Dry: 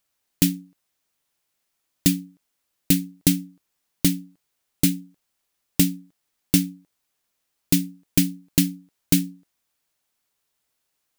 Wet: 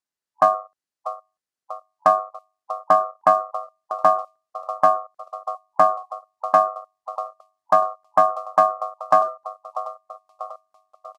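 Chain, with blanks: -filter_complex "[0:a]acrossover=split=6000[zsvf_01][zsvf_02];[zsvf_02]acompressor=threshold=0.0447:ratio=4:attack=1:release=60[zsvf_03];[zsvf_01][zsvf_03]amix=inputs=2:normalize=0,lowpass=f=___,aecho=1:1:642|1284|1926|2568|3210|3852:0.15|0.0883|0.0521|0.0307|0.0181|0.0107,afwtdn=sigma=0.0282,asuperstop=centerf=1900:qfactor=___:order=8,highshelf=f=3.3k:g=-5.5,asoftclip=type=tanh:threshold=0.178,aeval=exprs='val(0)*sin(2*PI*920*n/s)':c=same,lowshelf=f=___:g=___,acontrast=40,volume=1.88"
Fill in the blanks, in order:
10k, 0.98, 84, -12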